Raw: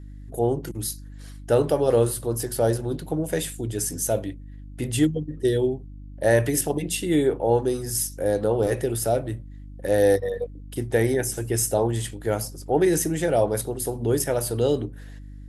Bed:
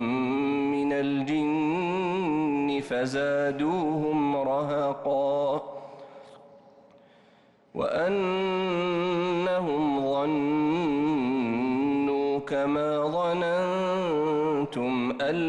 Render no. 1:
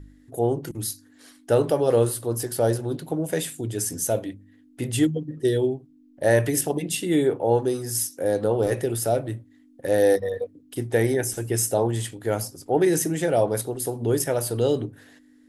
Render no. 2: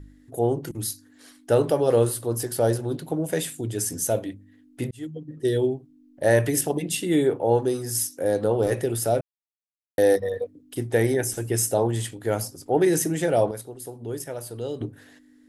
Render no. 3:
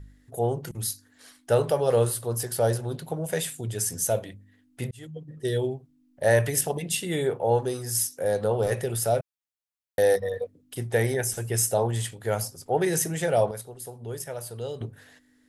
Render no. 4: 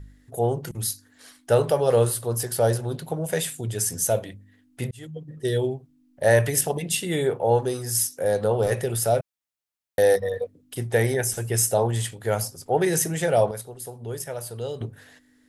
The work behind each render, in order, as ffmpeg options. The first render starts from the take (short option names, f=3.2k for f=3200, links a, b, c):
-af "bandreject=f=50:t=h:w=4,bandreject=f=100:t=h:w=4,bandreject=f=150:t=h:w=4,bandreject=f=200:t=h:w=4"
-filter_complex "[0:a]asplit=6[a][b][c][d][e][f];[a]atrim=end=4.91,asetpts=PTS-STARTPTS,afade=t=out:st=4.906:d=0.004:c=hsin[g];[b]atrim=start=4.91:end=9.21,asetpts=PTS-STARTPTS,afade=t=in:d=0.68,afade=t=out:st=4.296:d=0.004:c=hsin[h];[c]atrim=start=9.21:end=9.98,asetpts=PTS-STARTPTS,volume=0[i];[d]atrim=start=9.98:end=13.512,asetpts=PTS-STARTPTS,afade=t=in:d=0.004:c=hsin[j];[e]atrim=start=13.508:end=14.812,asetpts=PTS-STARTPTS,volume=-9.5dB[k];[f]atrim=start=14.808[l];[g][h][i][j]concat=n=4:v=0:a=1[m];[m][k]acrossfade=d=0.004:c1=hsin:c2=hsin[n];[n][l]acrossfade=d=0.004:c1=hsin:c2=hsin"
-af "equalizer=f=300:t=o:w=0.54:g=-13.5"
-af "volume=2.5dB"